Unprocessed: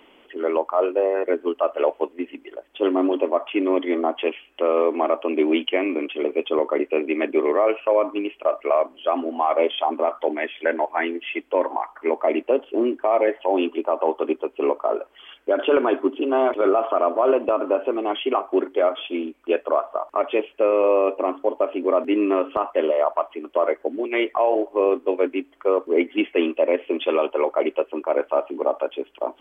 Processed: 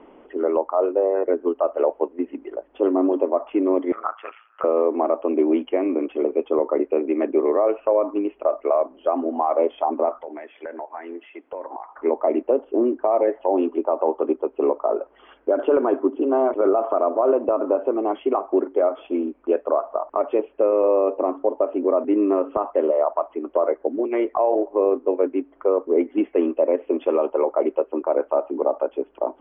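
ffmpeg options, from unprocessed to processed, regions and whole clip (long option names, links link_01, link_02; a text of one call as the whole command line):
ffmpeg -i in.wav -filter_complex "[0:a]asettb=1/sr,asplit=3[link_01][link_02][link_03];[link_01]atrim=end=3.924[link_04];[link_02]atrim=start=3.92:end=4.64,asetpts=PTS-STARTPTS,afade=type=in:duration=0.004:curve=qsin,afade=type=out:start_time=0.716:duration=0.004:curve=qsin,tremolo=f=110:d=0.889,highpass=frequency=1300:width_type=q:width=9.6[link_05];[link_03]atrim=start=4.636[link_06];[link_04][link_05]acrossfade=duration=0.004:curve1=hsin:curve2=qsin[link_07];[link_07][link_06]acrossfade=duration=0.004:curve1=qsin:curve2=hsin,asettb=1/sr,asplit=3[link_08][link_09][link_10];[link_08]atrim=end=10.214[link_11];[link_09]atrim=start=10.21:end=11.98,asetpts=PTS-STARTPTS,afade=type=in:duration=0.004:curve=qsin,afade=type=out:start_time=1.766:duration=0.004:curve=qsin,highpass=frequency=700:poles=1,acompressor=threshold=-36dB:ratio=4:attack=3.2:release=140:knee=1:detection=peak[link_12];[link_10]atrim=start=11.976[link_13];[link_11][link_12]acrossfade=duration=0.004:curve1=hsin:curve2=qsin[link_14];[link_14][link_13]acrossfade=duration=0.004:curve1=qsin:curve2=hsin,acompressor=threshold=-33dB:ratio=1.5,lowpass=1000,volume=7dB" out.wav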